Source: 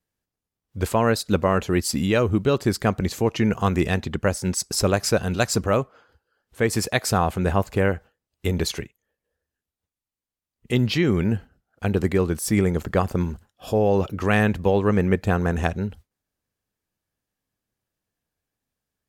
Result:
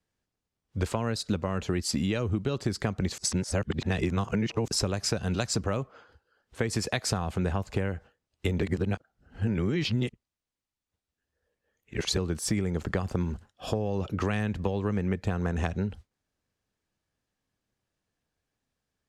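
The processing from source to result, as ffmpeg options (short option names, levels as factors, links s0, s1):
-filter_complex "[0:a]asplit=5[s0][s1][s2][s3][s4];[s0]atrim=end=3.182[s5];[s1]atrim=start=3.178:end=4.682,asetpts=PTS-STARTPTS,areverse[s6];[s2]atrim=start=4.678:end=8.622[s7];[s3]atrim=start=8.618:end=12.172,asetpts=PTS-STARTPTS,areverse[s8];[s4]atrim=start=12.168[s9];[s5][s6]acrossfade=d=0.004:c1=hsin:c2=hsin[s10];[s10][s7]acrossfade=d=0.004:c1=hsin:c2=hsin[s11];[s11][s8]acrossfade=d=0.004:c1=hsin:c2=hsin[s12];[s12][s9]acrossfade=d=0.004:c1=hsin:c2=hsin,acrossover=split=230|3000[s13][s14][s15];[s14]acompressor=threshold=0.0708:ratio=6[s16];[s13][s16][s15]amix=inputs=3:normalize=0,lowpass=7600,acompressor=threshold=0.0501:ratio=6,volume=1.19"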